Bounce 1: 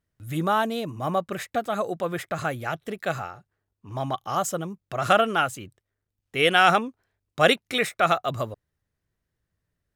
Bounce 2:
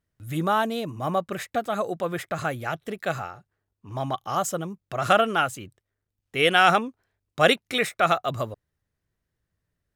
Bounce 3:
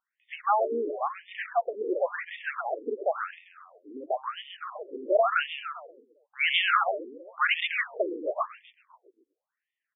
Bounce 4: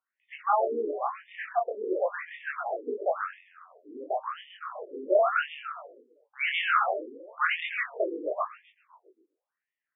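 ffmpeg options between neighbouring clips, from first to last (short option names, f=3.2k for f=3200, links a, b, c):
-af anull
-filter_complex "[0:a]asoftclip=type=tanh:threshold=-14dB,asplit=2[a][b];[b]asplit=6[c][d][e][f][g][h];[c]adelay=132,afreqshift=-41,volume=-5.5dB[i];[d]adelay=264,afreqshift=-82,volume=-12.1dB[j];[e]adelay=396,afreqshift=-123,volume=-18.6dB[k];[f]adelay=528,afreqshift=-164,volume=-25.2dB[l];[g]adelay=660,afreqshift=-205,volume=-31.7dB[m];[h]adelay=792,afreqshift=-246,volume=-38.3dB[n];[i][j][k][l][m][n]amix=inputs=6:normalize=0[o];[a][o]amix=inputs=2:normalize=0,afftfilt=real='re*between(b*sr/1024,340*pow(2600/340,0.5+0.5*sin(2*PI*0.95*pts/sr))/1.41,340*pow(2600/340,0.5+0.5*sin(2*PI*0.95*pts/sr))*1.41)':imag='im*between(b*sr/1024,340*pow(2600/340,0.5+0.5*sin(2*PI*0.95*pts/sr))/1.41,340*pow(2600/340,0.5+0.5*sin(2*PI*0.95*pts/sr))*1.41)':win_size=1024:overlap=0.75,volume=3dB"
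-af "flanger=delay=19.5:depth=5.9:speed=0.35,highpass=200,lowpass=2.2k,volume=3dB"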